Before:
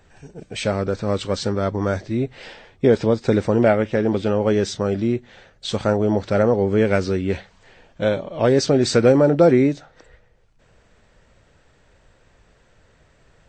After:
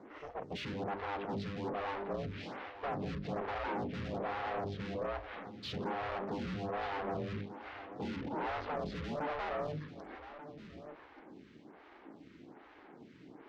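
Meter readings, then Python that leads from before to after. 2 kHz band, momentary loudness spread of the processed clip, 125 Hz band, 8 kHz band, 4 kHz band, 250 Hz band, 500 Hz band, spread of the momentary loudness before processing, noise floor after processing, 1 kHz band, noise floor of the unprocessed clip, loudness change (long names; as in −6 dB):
−13.0 dB, 18 LU, −20.0 dB, below −30 dB, −16.5 dB, −21.0 dB, −21.5 dB, 11 LU, −58 dBFS, −9.0 dB, −57 dBFS, −20.0 dB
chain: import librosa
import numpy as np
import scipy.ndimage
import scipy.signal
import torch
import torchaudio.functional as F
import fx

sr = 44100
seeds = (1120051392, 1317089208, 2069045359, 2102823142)

p1 = np.clip(10.0 ** (18.0 / 20.0) * x, -1.0, 1.0) / 10.0 ** (18.0 / 20.0)
p2 = p1 * np.sin(2.0 * np.pi * 300.0 * np.arange(len(p1)) / sr)
p3 = fx.env_lowpass_down(p2, sr, base_hz=1400.0, full_db=-23.0)
p4 = fx.hum_notches(p3, sr, base_hz=50, count=8)
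p5 = fx.tube_stage(p4, sr, drive_db=42.0, bias=0.55)
p6 = fx.highpass(p5, sr, hz=87.0, slope=6)
p7 = fx.air_absorb(p6, sr, metres=220.0)
p8 = p7 + fx.echo_single(p7, sr, ms=1186, db=-13.0, dry=0)
p9 = fx.stagger_phaser(p8, sr, hz=1.2)
y = F.gain(torch.from_numpy(p9), 9.5).numpy()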